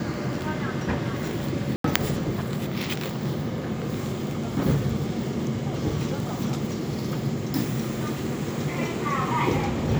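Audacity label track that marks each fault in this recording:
1.760000	1.840000	drop-out 83 ms

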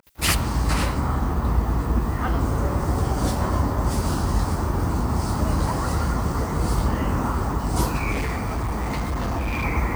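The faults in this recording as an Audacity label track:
8.110000	9.650000	clipping −21.5 dBFS

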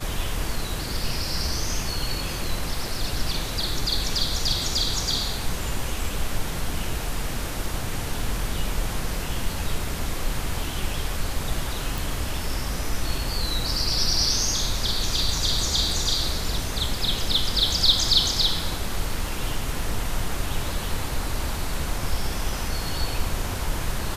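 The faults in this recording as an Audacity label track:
11.980000	11.980000	click

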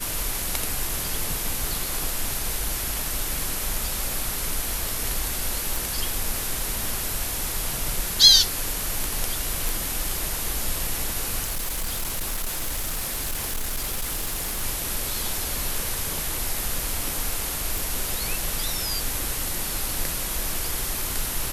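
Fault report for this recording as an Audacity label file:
5.760000	5.760000	click
9.690000	9.690000	click
11.430000	14.640000	clipping −23.5 dBFS
17.780000	17.780000	click

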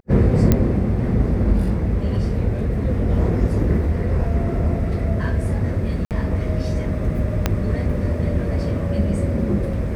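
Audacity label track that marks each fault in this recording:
0.520000	0.520000	click −3 dBFS
6.050000	6.110000	drop-out 58 ms
7.460000	7.460000	click −4 dBFS

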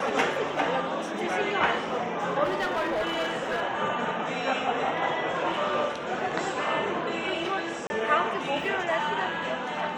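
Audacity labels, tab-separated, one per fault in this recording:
2.440000	3.620000	clipping −23.5 dBFS
7.870000	7.900000	drop-out 30 ms

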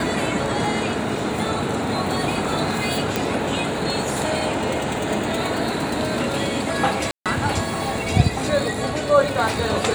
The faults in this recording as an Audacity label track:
3.160000	3.160000	click
7.110000	7.260000	drop-out 147 ms

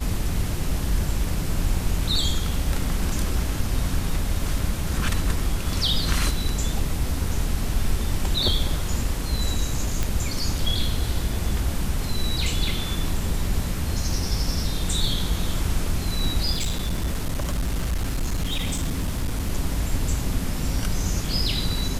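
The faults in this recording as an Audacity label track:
10.030000	10.030000	click
16.510000	19.500000	clipping −20.5 dBFS

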